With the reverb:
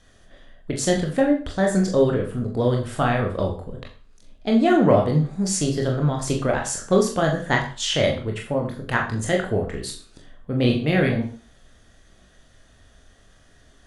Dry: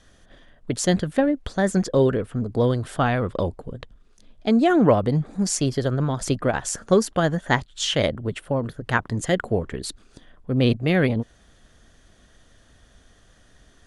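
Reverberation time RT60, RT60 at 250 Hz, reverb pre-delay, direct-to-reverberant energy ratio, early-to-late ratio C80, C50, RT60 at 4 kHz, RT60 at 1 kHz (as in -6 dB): 0.40 s, 0.45 s, 22 ms, 0.0 dB, 12.0 dB, 8.5 dB, 0.40 s, 0.40 s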